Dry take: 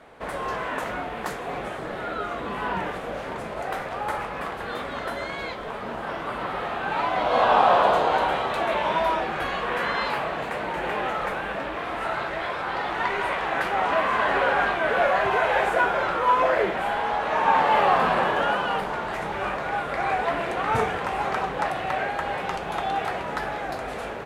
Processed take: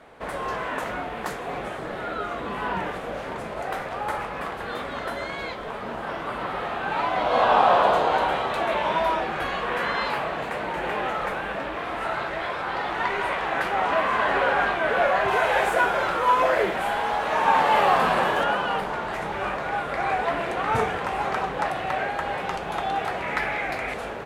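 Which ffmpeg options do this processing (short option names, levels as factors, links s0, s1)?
-filter_complex "[0:a]asettb=1/sr,asplit=3[s0][s1][s2];[s0]atrim=end=15.284[s3];[s1]atrim=start=15.28:end=18.44,asetpts=PTS-STARTPTS,afade=t=in:d=0.004:c=qsin,afade=t=out:st=3.156:d=0.004:c=qsin,highshelf=f=5900:g=10[s4];[s2]atrim=start=18.436[s5];[s3][s4]acrossfade=d=0.004:c1=hsin:c2=qsin[s6];[s6][s5]acrossfade=d=0.004:c1=qsin:c2=hsin,asettb=1/sr,asplit=3[s7][s8][s9];[s7]atrim=end=23.224[s10];[s8]atrim=start=23.22:end=23.94,asetpts=PTS-STARTPTS,afade=t=in:d=0.004:c=qsin,afade=t=out:st=0.716:d=0.004:c=qsin,equalizer=f=2200:w=2.7:g=14[s11];[s9]atrim=start=23.936[s12];[s10][s11]acrossfade=d=0.004:c1=hsin:c2=qsin[s13];[s13][s12]acrossfade=d=0.004:c1=qsin:c2=hsin"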